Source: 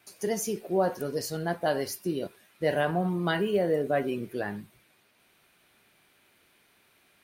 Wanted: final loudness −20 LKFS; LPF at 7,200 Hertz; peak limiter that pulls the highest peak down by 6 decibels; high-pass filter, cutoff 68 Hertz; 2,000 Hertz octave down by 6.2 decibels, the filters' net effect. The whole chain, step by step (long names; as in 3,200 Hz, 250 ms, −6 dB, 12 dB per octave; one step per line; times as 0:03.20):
high-pass filter 68 Hz
low-pass filter 7,200 Hz
parametric band 2,000 Hz −8.5 dB
level +11.5 dB
brickwall limiter −8.5 dBFS